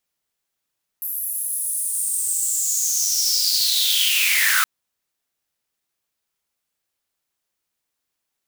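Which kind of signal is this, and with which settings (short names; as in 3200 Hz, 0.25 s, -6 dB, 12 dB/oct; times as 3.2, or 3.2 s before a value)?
swept filtered noise white, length 3.62 s highpass, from 12000 Hz, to 1300 Hz, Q 7.6, linear, gain ramp +13 dB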